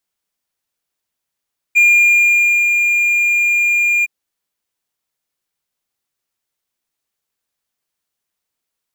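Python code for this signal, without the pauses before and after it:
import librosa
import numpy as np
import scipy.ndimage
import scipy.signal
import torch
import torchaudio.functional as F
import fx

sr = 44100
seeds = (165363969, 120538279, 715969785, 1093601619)

y = fx.adsr_tone(sr, wave='triangle', hz=2410.0, attack_ms=23.0, decay_ms=897.0, sustain_db=-5.0, held_s=2.29, release_ms=24.0, level_db=-4.5)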